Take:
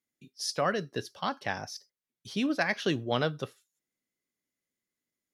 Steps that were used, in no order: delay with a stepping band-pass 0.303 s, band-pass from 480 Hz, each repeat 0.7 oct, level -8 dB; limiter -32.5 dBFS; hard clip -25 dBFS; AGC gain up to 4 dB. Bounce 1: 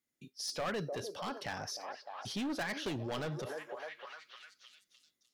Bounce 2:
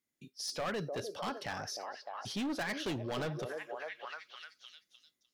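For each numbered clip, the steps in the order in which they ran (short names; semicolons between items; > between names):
AGC > hard clip > delay with a stepping band-pass > limiter; delay with a stepping band-pass > AGC > hard clip > limiter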